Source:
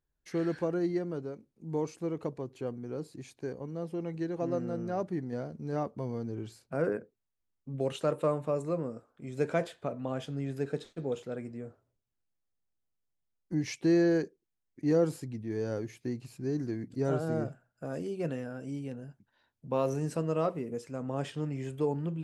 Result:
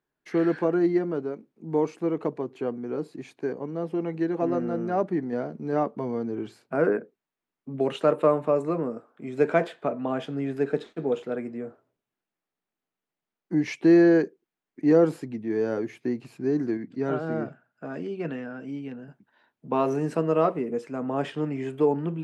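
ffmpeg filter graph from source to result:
-filter_complex "[0:a]asettb=1/sr,asplit=3[s0][s1][s2];[s0]atrim=end=16.774[s3];[s1]atrim=start=16.77:end=19.08,asetpts=PTS-STARTPTS,afade=t=in:d=0.004:c=qsin,afade=t=out:st=2.306:d=0.004:c=qsin,highpass=110,lowpass=4900,equalizer=f=520:w=0.62:g=-6[s4];[s2]atrim=start=19.076[s5];[s3][s4]acrossfade=d=0.004:c1=hsin:c2=qsin[s6];[s6][s5]acrossfade=d=0.004:c1=qsin:c2=hsin,acrossover=split=170 3100:gain=0.0631 1 0.224[s7][s8][s9];[s7][s8][s9]amix=inputs=3:normalize=0,bandreject=f=530:w=12,volume=2.82"

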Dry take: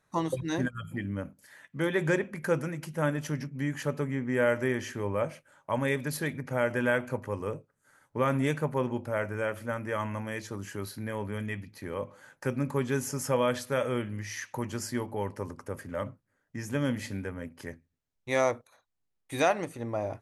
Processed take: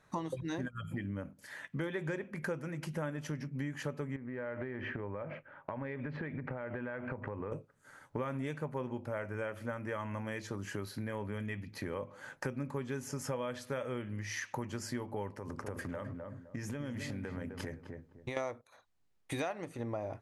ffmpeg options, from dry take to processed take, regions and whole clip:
-filter_complex "[0:a]asettb=1/sr,asplit=3[s0][s1][s2];[s0]atrim=end=4.164[s3];[s1]atrim=start=4.16:end=7.52,asetpts=PTS-STARTPTS,afade=t=in:d=0.004:c=qsin,afade=t=out:st=3.356:d=0.004:c=qsin,lowpass=f=2400:w=0.5412,lowpass=f=2400:w=1.3066,acompressor=threshold=0.0141:ratio=12:attack=3.2:release=140:knee=1:detection=peak[s4];[s2]atrim=start=7.516[s5];[s3][s4]acrossfade=d=0.004:c1=hsin:c2=qsin[s6];[s6][s5]acrossfade=d=0.004:c1=qsin:c2=hsin,asettb=1/sr,asplit=3[s7][s8][s9];[s7]atrim=end=15.354[s10];[s8]atrim=start=15.35:end=18.37,asetpts=PTS-STARTPTS,afade=t=in:d=0.004:c=qsin,afade=t=out:st=3.016:d=0.004:c=qsin,acompressor=threshold=0.0112:ratio=6:attack=3.2:release=140:knee=1:detection=peak,asplit=2[s11][s12];[s12]adelay=257,lowpass=f=970:p=1,volume=0.473,asplit=2[s13][s14];[s14]adelay=257,lowpass=f=970:p=1,volume=0.29,asplit=2[s15][s16];[s16]adelay=257,lowpass=f=970:p=1,volume=0.29,asplit=2[s17][s18];[s18]adelay=257,lowpass=f=970:p=1,volume=0.29[s19];[s11][s13][s15][s17][s19]amix=inputs=5:normalize=0,atrim=end_sample=133182[s20];[s9]atrim=start=18.366[s21];[s10][s20]acrossfade=d=0.004:c1=hsin:c2=qsin[s22];[s22][s21]acrossfade=d=0.004:c1=qsin:c2=hsin,highshelf=f=8400:g=-10.5,acompressor=threshold=0.00708:ratio=5,volume=2.11"

